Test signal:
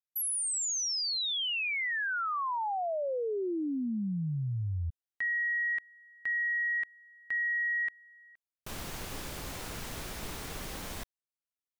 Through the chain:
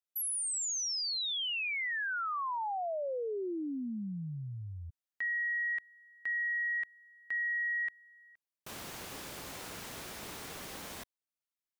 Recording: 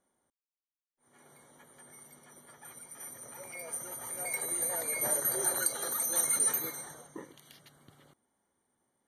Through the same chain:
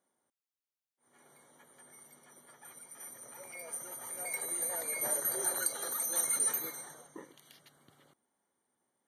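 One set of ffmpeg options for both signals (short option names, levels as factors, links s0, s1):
-af "highpass=f=200:p=1,volume=0.75"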